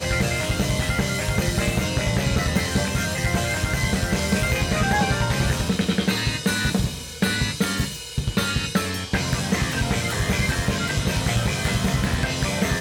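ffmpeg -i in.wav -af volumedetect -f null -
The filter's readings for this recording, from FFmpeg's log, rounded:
mean_volume: -22.7 dB
max_volume: -8.5 dB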